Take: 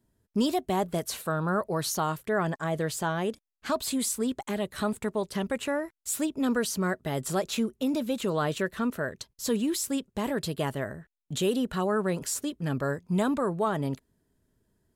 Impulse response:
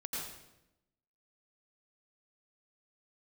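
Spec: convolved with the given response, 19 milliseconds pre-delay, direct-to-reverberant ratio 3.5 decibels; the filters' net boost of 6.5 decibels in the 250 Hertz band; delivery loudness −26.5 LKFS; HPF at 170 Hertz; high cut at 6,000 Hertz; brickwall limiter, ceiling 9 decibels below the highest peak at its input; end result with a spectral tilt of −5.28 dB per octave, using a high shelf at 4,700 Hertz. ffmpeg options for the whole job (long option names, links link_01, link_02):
-filter_complex "[0:a]highpass=170,lowpass=6000,equalizer=frequency=250:width_type=o:gain=9,highshelf=frequency=4700:gain=4.5,alimiter=limit=-19dB:level=0:latency=1,asplit=2[link_01][link_02];[1:a]atrim=start_sample=2205,adelay=19[link_03];[link_02][link_03]afir=irnorm=-1:irlink=0,volume=-5dB[link_04];[link_01][link_04]amix=inputs=2:normalize=0,volume=0.5dB"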